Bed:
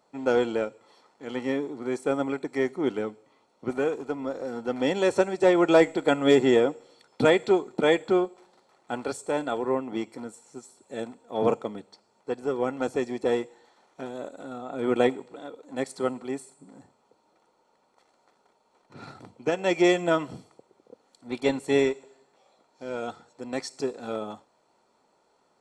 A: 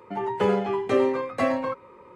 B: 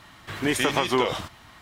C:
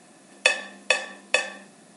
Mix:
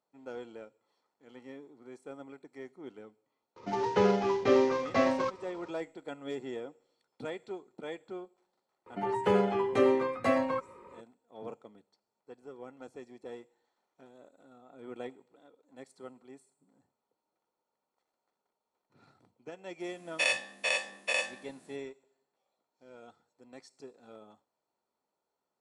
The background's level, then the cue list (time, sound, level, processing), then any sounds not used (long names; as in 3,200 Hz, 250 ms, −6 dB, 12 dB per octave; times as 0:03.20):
bed −19.5 dB
0:03.56: mix in A −2.5 dB + variable-slope delta modulation 32 kbit/s
0:08.86: mix in A −3.5 dB
0:19.80: mix in C −14.5 dB + every bin's largest magnitude spread in time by 120 ms
not used: B